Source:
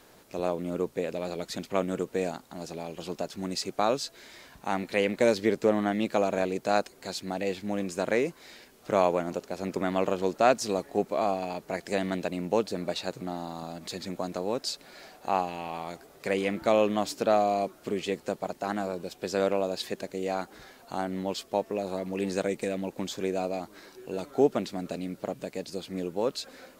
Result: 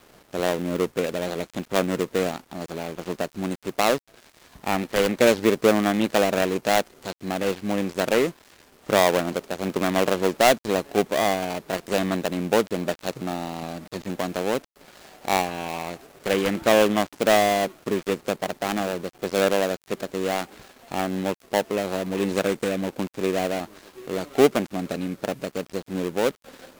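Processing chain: switching dead time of 0.25 ms; gain +6 dB

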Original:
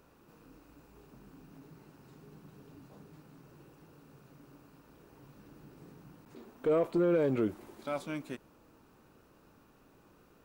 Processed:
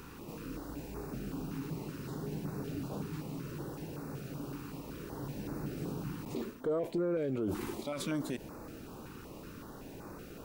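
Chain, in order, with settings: reverse; compressor 16:1, threshold -39 dBFS, peak gain reduction 15 dB; reverse; limiter -41.5 dBFS, peak gain reduction 11 dB; stepped notch 5.3 Hz 620–3100 Hz; gain +15.5 dB

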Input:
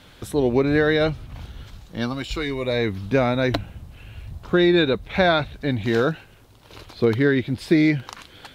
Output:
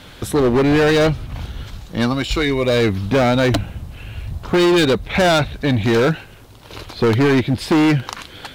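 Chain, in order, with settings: hard clip -20 dBFS, distortion -8 dB; gain +8.5 dB

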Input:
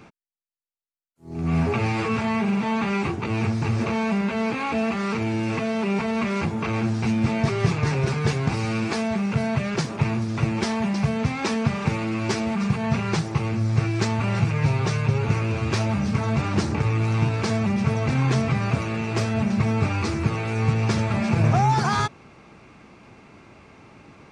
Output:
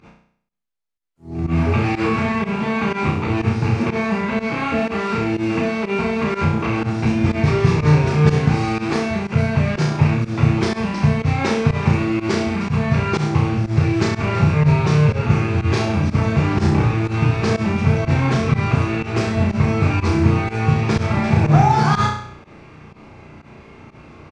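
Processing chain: high shelf 7200 Hz -11.5 dB; doubler 13 ms -11.5 dB; flutter echo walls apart 5.7 m, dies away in 0.61 s; pump 123 bpm, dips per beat 1, -18 dB, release 86 ms; low shelf 110 Hz +7.5 dB; gain +2.5 dB

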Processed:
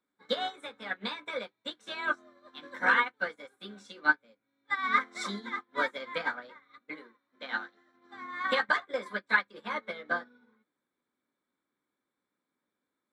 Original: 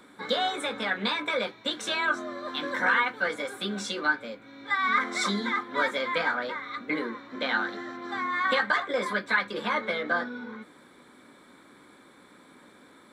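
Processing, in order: 6.8–7.94 low shelf 410 Hz -5.5 dB; upward expander 2.5:1, over -43 dBFS; gain +2 dB

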